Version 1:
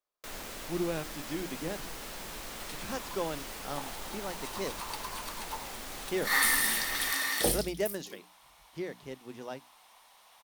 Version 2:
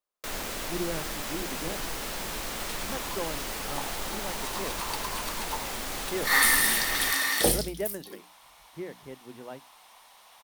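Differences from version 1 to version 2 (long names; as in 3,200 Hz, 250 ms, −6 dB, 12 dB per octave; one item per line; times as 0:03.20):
speech: add high-frequency loss of the air 290 metres
first sound +7.5 dB
second sound +4.5 dB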